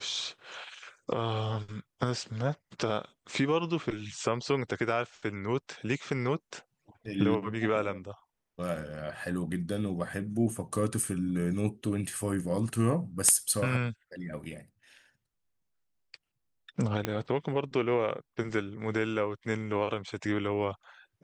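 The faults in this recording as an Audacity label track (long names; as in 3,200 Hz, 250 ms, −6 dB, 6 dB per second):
17.050000	17.050000	click −14 dBFS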